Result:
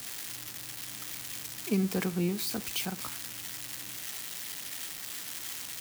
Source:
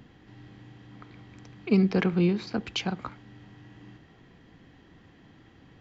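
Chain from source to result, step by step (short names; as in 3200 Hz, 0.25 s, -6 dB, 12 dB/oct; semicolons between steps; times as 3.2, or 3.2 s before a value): switching spikes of -18.5 dBFS; gain -6.5 dB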